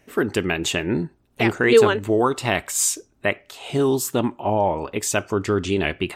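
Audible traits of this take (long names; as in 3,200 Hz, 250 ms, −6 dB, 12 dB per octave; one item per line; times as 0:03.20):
background noise floor −62 dBFS
spectral slope −4.0 dB per octave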